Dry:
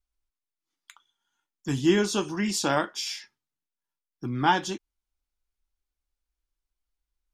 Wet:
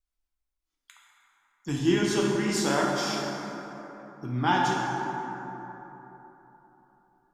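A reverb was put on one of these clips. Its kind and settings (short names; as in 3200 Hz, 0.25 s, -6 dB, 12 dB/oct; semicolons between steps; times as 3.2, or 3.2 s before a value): plate-style reverb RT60 3.7 s, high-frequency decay 0.4×, DRR -3 dB; gain -4 dB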